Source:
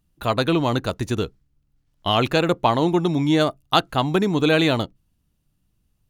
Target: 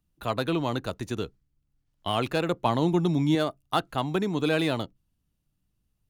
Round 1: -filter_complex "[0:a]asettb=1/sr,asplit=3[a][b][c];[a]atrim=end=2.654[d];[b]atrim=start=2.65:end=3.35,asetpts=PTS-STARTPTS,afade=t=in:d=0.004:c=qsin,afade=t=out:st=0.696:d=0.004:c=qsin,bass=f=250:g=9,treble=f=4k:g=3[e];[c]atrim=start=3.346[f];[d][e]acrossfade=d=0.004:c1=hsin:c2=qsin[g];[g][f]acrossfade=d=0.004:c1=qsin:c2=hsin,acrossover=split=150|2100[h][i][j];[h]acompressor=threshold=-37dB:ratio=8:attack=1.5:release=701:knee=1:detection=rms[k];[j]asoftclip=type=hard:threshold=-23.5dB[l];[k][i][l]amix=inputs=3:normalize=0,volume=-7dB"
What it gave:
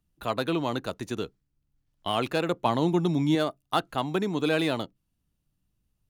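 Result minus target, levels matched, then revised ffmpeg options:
compressor: peak gain reduction +8 dB
-filter_complex "[0:a]asettb=1/sr,asplit=3[a][b][c];[a]atrim=end=2.654[d];[b]atrim=start=2.65:end=3.35,asetpts=PTS-STARTPTS,afade=t=in:d=0.004:c=qsin,afade=t=out:st=0.696:d=0.004:c=qsin,bass=f=250:g=9,treble=f=4k:g=3[e];[c]atrim=start=3.346[f];[d][e]acrossfade=d=0.004:c1=hsin:c2=qsin[g];[g][f]acrossfade=d=0.004:c1=qsin:c2=hsin,acrossover=split=150|2100[h][i][j];[h]acompressor=threshold=-28dB:ratio=8:attack=1.5:release=701:knee=1:detection=rms[k];[j]asoftclip=type=hard:threshold=-23.5dB[l];[k][i][l]amix=inputs=3:normalize=0,volume=-7dB"

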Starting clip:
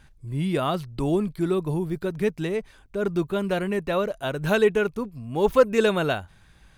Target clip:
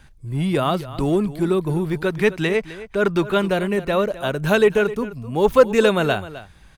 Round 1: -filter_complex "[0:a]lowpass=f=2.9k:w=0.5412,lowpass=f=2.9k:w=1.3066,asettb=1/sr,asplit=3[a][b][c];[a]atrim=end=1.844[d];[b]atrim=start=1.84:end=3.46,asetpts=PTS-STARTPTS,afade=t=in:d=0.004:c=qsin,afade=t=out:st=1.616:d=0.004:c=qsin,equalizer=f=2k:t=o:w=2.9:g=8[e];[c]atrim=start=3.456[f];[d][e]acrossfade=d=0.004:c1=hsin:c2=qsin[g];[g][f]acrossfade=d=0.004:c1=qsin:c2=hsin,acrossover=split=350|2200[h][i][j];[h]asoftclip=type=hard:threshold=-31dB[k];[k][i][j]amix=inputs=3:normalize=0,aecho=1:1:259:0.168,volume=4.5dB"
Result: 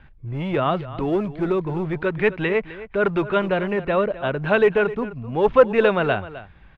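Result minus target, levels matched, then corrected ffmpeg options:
hard clip: distortion +11 dB; 4000 Hz band -5.0 dB
-filter_complex "[0:a]asettb=1/sr,asplit=3[a][b][c];[a]atrim=end=1.844[d];[b]atrim=start=1.84:end=3.46,asetpts=PTS-STARTPTS,afade=t=in:d=0.004:c=qsin,afade=t=out:st=1.616:d=0.004:c=qsin,equalizer=f=2k:t=o:w=2.9:g=8[e];[c]atrim=start=3.456[f];[d][e]acrossfade=d=0.004:c1=hsin:c2=qsin[g];[g][f]acrossfade=d=0.004:c1=qsin:c2=hsin,acrossover=split=350|2200[h][i][j];[h]asoftclip=type=hard:threshold=-23dB[k];[k][i][j]amix=inputs=3:normalize=0,aecho=1:1:259:0.168,volume=4.5dB"

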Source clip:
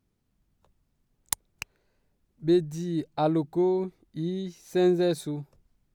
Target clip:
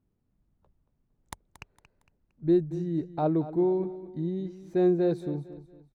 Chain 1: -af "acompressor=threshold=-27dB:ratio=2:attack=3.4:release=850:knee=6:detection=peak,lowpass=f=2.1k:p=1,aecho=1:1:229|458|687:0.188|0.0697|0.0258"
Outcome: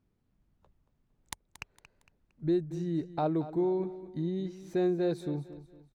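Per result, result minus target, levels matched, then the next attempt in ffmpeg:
compressor: peak gain reduction +6.5 dB; 2000 Hz band +5.0 dB
-af "lowpass=f=2.1k:p=1,aecho=1:1:229|458|687:0.188|0.0697|0.0258"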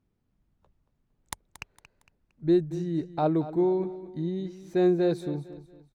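2000 Hz band +4.5 dB
-af "lowpass=f=820:p=1,aecho=1:1:229|458|687:0.188|0.0697|0.0258"

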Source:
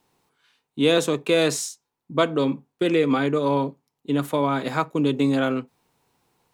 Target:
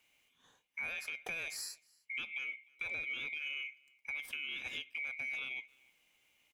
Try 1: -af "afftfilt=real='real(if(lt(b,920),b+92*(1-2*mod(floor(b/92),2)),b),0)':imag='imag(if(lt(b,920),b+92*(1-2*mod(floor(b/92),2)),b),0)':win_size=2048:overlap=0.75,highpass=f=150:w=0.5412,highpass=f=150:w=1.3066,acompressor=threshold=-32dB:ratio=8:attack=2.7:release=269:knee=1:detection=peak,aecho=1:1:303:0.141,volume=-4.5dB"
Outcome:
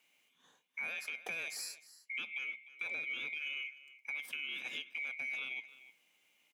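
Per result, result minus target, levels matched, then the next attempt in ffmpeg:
echo-to-direct +10 dB; 125 Hz band -5.5 dB
-af "afftfilt=real='real(if(lt(b,920),b+92*(1-2*mod(floor(b/92),2)),b),0)':imag='imag(if(lt(b,920),b+92*(1-2*mod(floor(b/92),2)),b),0)':win_size=2048:overlap=0.75,highpass=f=150:w=0.5412,highpass=f=150:w=1.3066,acompressor=threshold=-32dB:ratio=8:attack=2.7:release=269:knee=1:detection=peak,aecho=1:1:303:0.0447,volume=-4.5dB"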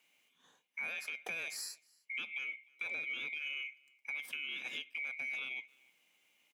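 125 Hz band -5.5 dB
-af "afftfilt=real='real(if(lt(b,920),b+92*(1-2*mod(floor(b/92),2)),b),0)':imag='imag(if(lt(b,920),b+92*(1-2*mod(floor(b/92),2)),b),0)':win_size=2048:overlap=0.75,acompressor=threshold=-32dB:ratio=8:attack=2.7:release=269:knee=1:detection=peak,aecho=1:1:303:0.0447,volume=-4.5dB"

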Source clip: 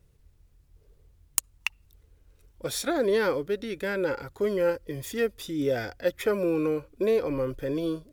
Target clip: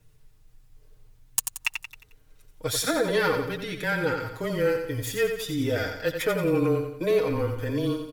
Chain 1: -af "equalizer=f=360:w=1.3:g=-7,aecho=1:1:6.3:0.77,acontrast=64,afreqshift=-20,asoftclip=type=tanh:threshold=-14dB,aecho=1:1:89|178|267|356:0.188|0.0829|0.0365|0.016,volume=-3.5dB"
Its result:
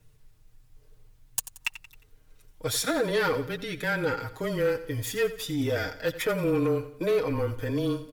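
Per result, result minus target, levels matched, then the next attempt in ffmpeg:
soft clip: distortion +8 dB; echo-to-direct -7.5 dB
-af "equalizer=f=360:w=1.3:g=-7,aecho=1:1:6.3:0.77,acontrast=64,afreqshift=-20,asoftclip=type=tanh:threshold=-6.5dB,aecho=1:1:89|178|267|356:0.188|0.0829|0.0365|0.016,volume=-3.5dB"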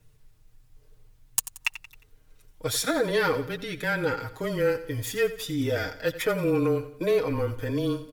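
echo-to-direct -7.5 dB
-af "equalizer=f=360:w=1.3:g=-7,aecho=1:1:6.3:0.77,acontrast=64,afreqshift=-20,asoftclip=type=tanh:threshold=-6.5dB,aecho=1:1:89|178|267|356|445:0.447|0.197|0.0865|0.0381|0.0167,volume=-3.5dB"

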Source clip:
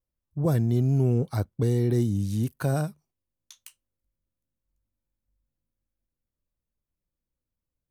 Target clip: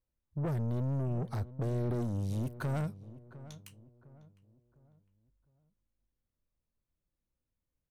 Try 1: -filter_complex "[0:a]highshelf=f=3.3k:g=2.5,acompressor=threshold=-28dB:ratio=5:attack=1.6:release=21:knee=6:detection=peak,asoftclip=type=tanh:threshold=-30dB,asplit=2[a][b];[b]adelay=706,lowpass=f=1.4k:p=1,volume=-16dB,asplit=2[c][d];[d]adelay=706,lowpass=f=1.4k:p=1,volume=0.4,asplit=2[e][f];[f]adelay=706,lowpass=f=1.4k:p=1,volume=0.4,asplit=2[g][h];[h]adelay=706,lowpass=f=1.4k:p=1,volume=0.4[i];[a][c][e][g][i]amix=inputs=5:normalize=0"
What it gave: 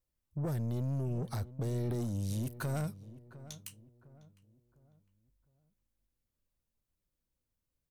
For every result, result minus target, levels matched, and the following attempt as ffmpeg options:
8000 Hz band +10.0 dB; compressor: peak gain reduction +5 dB
-filter_complex "[0:a]highshelf=f=3.3k:g=-9,acompressor=threshold=-28dB:ratio=5:attack=1.6:release=21:knee=6:detection=peak,asoftclip=type=tanh:threshold=-30dB,asplit=2[a][b];[b]adelay=706,lowpass=f=1.4k:p=1,volume=-16dB,asplit=2[c][d];[d]adelay=706,lowpass=f=1.4k:p=1,volume=0.4,asplit=2[e][f];[f]adelay=706,lowpass=f=1.4k:p=1,volume=0.4,asplit=2[g][h];[h]adelay=706,lowpass=f=1.4k:p=1,volume=0.4[i];[a][c][e][g][i]amix=inputs=5:normalize=0"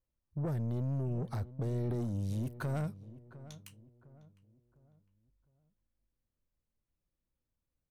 compressor: peak gain reduction +5 dB
-filter_complex "[0:a]highshelf=f=3.3k:g=-9,acompressor=threshold=-21.5dB:ratio=5:attack=1.6:release=21:knee=6:detection=peak,asoftclip=type=tanh:threshold=-30dB,asplit=2[a][b];[b]adelay=706,lowpass=f=1.4k:p=1,volume=-16dB,asplit=2[c][d];[d]adelay=706,lowpass=f=1.4k:p=1,volume=0.4,asplit=2[e][f];[f]adelay=706,lowpass=f=1.4k:p=1,volume=0.4,asplit=2[g][h];[h]adelay=706,lowpass=f=1.4k:p=1,volume=0.4[i];[a][c][e][g][i]amix=inputs=5:normalize=0"

